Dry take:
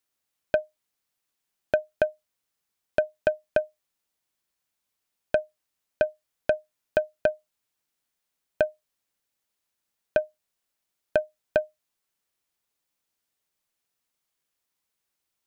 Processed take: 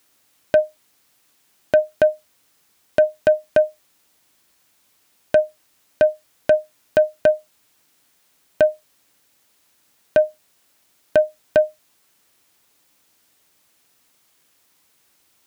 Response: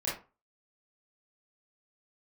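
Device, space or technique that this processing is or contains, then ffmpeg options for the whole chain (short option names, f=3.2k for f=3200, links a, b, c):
mastering chain: -af "highpass=59,equalizer=f=290:t=o:w=0.34:g=4,acompressor=threshold=-22dB:ratio=2.5,asoftclip=type=tanh:threshold=-12.5dB,alimiter=level_in=25dB:limit=-1dB:release=50:level=0:latency=1,volume=-5dB"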